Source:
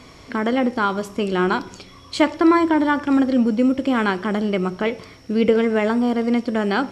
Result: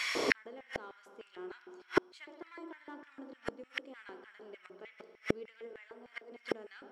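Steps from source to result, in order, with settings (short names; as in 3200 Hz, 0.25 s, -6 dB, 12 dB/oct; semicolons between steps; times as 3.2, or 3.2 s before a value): in parallel at -4.5 dB: soft clip -20.5 dBFS, distortion -9 dB; 5.73–6.32 on the sum: rippled Chebyshev high-pass 240 Hz, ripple 3 dB; spring tank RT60 2.7 s, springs 55 ms, chirp 60 ms, DRR 6 dB; LFO high-pass square 3.3 Hz 400–1900 Hz; flipped gate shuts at -19 dBFS, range -40 dB; gain +6 dB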